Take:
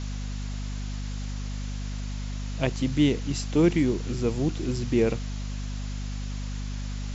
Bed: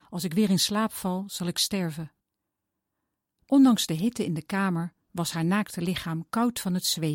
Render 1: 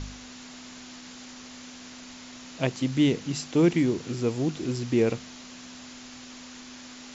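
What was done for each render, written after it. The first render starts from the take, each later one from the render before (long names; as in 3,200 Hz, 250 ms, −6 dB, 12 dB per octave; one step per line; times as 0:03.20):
hum removal 50 Hz, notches 4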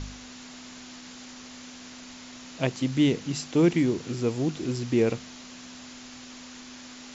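no processing that can be heard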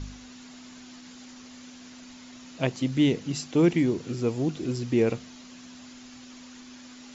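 broadband denoise 6 dB, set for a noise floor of −45 dBFS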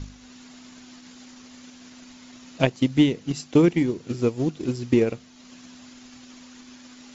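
transient designer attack +8 dB, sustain −5 dB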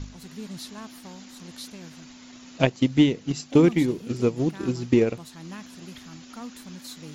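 mix in bed −15 dB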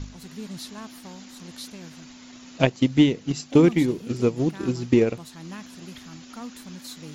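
level +1 dB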